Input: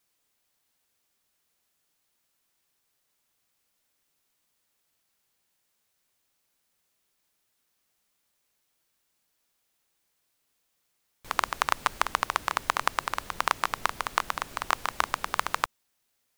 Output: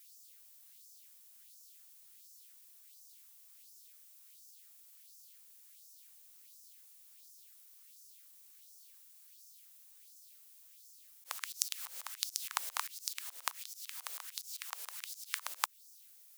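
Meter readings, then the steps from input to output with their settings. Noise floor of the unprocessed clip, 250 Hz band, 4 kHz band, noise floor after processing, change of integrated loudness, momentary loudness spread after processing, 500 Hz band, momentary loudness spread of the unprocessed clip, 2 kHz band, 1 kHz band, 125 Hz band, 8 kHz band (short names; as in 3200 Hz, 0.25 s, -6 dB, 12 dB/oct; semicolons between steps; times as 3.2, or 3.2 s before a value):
-76 dBFS, under -40 dB, -6.5 dB, -60 dBFS, -10.0 dB, 19 LU, -23.5 dB, 4 LU, -15.0 dB, -18.0 dB, under -40 dB, 0.0 dB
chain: differentiator; LFO high-pass sine 1.4 Hz 490–5700 Hz; auto swell 0.31 s; gain +13 dB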